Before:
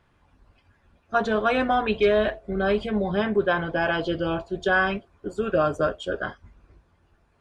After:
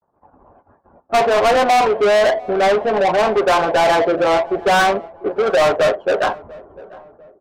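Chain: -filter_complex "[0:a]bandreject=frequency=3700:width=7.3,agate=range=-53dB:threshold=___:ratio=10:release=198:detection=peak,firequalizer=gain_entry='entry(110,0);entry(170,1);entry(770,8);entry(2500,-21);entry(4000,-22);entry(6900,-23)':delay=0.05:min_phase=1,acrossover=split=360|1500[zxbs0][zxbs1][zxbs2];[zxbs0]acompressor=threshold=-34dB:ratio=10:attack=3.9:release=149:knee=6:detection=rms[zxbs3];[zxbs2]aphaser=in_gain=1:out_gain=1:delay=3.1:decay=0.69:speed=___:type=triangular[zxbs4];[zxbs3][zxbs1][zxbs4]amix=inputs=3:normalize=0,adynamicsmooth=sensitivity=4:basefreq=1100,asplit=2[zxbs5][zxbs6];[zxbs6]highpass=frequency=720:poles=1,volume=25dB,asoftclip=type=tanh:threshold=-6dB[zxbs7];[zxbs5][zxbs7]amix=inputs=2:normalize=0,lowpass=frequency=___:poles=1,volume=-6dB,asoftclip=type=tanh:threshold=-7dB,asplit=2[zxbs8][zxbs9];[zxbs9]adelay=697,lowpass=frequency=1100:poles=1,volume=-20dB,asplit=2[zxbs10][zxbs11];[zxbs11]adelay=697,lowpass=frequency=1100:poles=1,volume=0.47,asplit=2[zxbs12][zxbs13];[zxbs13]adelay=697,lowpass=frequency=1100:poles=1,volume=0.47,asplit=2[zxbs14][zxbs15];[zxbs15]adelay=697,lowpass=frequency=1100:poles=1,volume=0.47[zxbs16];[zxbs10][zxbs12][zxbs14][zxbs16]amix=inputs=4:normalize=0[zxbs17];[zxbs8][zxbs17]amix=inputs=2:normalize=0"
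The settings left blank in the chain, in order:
-60dB, 0.35, 6000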